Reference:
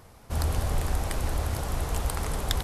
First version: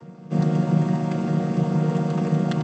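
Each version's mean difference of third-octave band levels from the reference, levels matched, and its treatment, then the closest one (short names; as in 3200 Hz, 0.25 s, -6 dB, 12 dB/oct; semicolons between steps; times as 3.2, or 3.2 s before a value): 13.5 dB: chord vocoder minor triad, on D#3; low shelf 410 Hz +9.5 dB; comb 5.8 ms, depth 36%; gain +5.5 dB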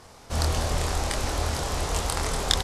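3.0 dB: LPF 6100 Hz 12 dB/oct; tone controls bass -6 dB, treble +9 dB; doubler 25 ms -3.5 dB; gain +3.5 dB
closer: second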